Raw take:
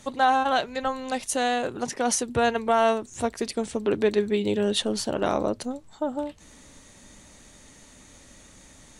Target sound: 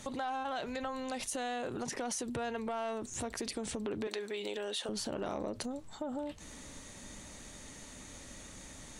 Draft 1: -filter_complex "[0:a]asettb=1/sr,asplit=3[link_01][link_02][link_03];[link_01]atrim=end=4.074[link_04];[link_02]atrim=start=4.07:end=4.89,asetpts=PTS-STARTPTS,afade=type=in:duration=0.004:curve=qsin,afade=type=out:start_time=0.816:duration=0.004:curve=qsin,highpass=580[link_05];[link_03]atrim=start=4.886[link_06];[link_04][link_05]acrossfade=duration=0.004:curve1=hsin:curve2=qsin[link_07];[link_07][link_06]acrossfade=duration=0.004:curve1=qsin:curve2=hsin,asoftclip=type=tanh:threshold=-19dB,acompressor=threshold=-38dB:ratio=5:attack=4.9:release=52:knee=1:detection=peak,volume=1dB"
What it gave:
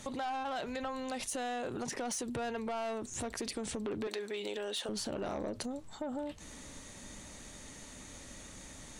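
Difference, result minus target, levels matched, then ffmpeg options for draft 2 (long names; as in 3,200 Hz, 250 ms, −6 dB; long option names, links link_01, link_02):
soft clipping: distortion +10 dB
-filter_complex "[0:a]asettb=1/sr,asplit=3[link_01][link_02][link_03];[link_01]atrim=end=4.074[link_04];[link_02]atrim=start=4.07:end=4.89,asetpts=PTS-STARTPTS,afade=type=in:duration=0.004:curve=qsin,afade=type=out:start_time=0.816:duration=0.004:curve=qsin,highpass=580[link_05];[link_03]atrim=start=4.886[link_06];[link_04][link_05]acrossfade=duration=0.004:curve1=hsin:curve2=qsin[link_07];[link_07][link_06]acrossfade=duration=0.004:curve1=qsin:curve2=hsin,asoftclip=type=tanh:threshold=-11dB,acompressor=threshold=-38dB:ratio=5:attack=4.9:release=52:knee=1:detection=peak,volume=1dB"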